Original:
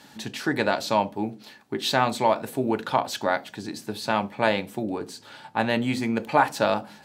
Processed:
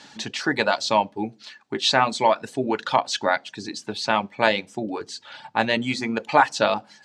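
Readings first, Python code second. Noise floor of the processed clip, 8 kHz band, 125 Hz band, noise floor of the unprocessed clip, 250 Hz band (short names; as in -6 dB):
-55 dBFS, +4.0 dB, -2.5 dB, -51 dBFS, -1.0 dB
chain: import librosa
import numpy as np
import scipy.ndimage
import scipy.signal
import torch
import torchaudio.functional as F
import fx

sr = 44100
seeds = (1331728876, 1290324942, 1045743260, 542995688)

y = scipy.signal.sosfilt(scipy.signal.butter(4, 7000.0, 'lowpass', fs=sr, output='sos'), x)
y = fx.dereverb_blind(y, sr, rt60_s=0.72)
y = fx.tilt_eq(y, sr, slope=1.5)
y = y * 10.0 ** (3.5 / 20.0)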